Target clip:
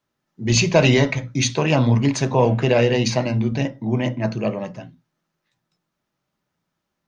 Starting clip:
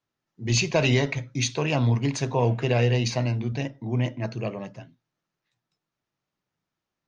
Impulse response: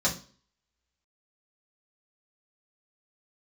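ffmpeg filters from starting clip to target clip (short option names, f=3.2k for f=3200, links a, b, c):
-filter_complex "[0:a]asplit=2[a][b];[1:a]atrim=start_sample=2205,atrim=end_sample=3087,lowpass=2.3k[c];[b][c]afir=irnorm=-1:irlink=0,volume=-17.5dB[d];[a][d]amix=inputs=2:normalize=0,volume=5.5dB"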